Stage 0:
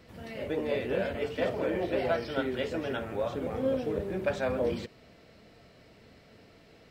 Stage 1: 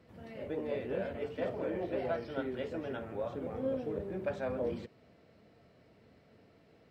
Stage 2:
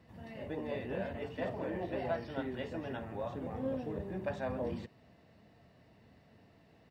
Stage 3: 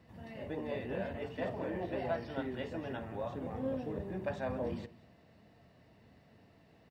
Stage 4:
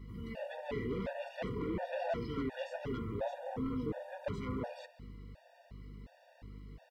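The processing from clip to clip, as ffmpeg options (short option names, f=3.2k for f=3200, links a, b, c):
-af "highpass=66,highshelf=f=2.1k:g=-9.5,volume=-5dB"
-af "aecho=1:1:1.1:0.41"
-af "aecho=1:1:193:0.0944"
-af "asoftclip=type=tanh:threshold=-35dB,aeval=exprs='val(0)+0.002*(sin(2*PI*50*n/s)+sin(2*PI*2*50*n/s)/2+sin(2*PI*3*50*n/s)/3+sin(2*PI*4*50*n/s)/4+sin(2*PI*5*50*n/s)/5)':c=same,afftfilt=real='re*gt(sin(2*PI*1.4*pts/sr)*(1-2*mod(floor(b*sr/1024/480),2)),0)':imag='im*gt(sin(2*PI*1.4*pts/sr)*(1-2*mod(floor(b*sr/1024/480),2)),0)':win_size=1024:overlap=0.75,volume=6dB"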